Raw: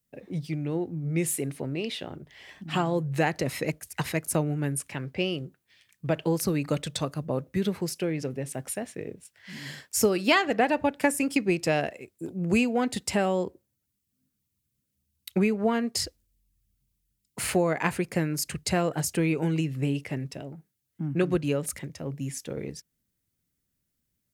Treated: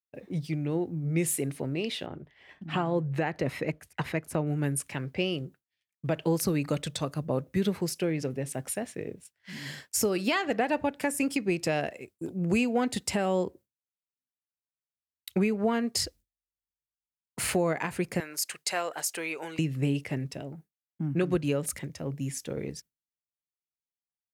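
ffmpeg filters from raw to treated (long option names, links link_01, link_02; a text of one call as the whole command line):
ffmpeg -i in.wav -filter_complex "[0:a]asettb=1/sr,asplit=3[link_01][link_02][link_03];[link_01]atrim=end=2.064[link_04];[link_02]atrim=start=2.06:end=4.47,asetpts=PTS-STARTPTS,afade=type=in:duration=0.004:curve=qsin,afade=type=out:start_time=2.406:duration=0.004:curve=qsin,bass=frequency=250:gain=-1,treble=frequency=4000:gain=-13[link_05];[link_03]atrim=start=4.466[link_06];[link_04][link_05]acrossfade=duration=0.004:curve1=hsin:curve2=qsin[link_07];[link_07][link_06]acrossfade=duration=0.004:curve1=qsin:curve2=hsin,asettb=1/sr,asplit=3[link_08][link_09][link_10];[link_08]atrim=end=18.204[link_11];[link_09]atrim=start=18.2:end=19.59,asetpts=PTS-STARTPTS,afade=type=in:duration=0.004:curve=qsin,afade=type=out:start_time=1.386:duration=0.004:curve=qsin,highpass=690[link_12];[link_10]atrim=start=19.586[link_13];[link_11][link_12]acrossfade=duration=0.004:curve1=hsin:curve2=qsin[link_14];[link_14][link_13]acrossfade=duration=0.004:curve1=qsin:curve2=hsin,agate=range=-33dB:threshold=-45dB:ratio=3:detection=peak,alimiter=limit=-16dB:level=0:latency=1:release=182" out.wav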